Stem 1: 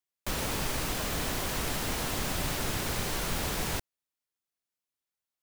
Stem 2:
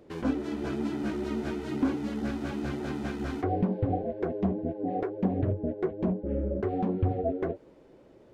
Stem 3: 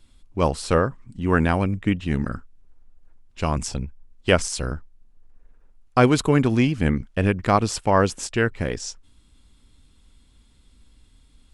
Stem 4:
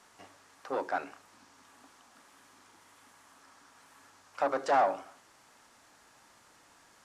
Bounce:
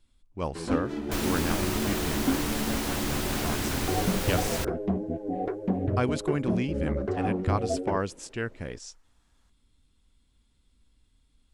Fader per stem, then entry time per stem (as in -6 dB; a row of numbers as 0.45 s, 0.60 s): +0.5 dB, 0.0 dB, -11.0 dB, -14.5 dB; 0.85 s, 0.45 s, 0.00 s, 2.45 s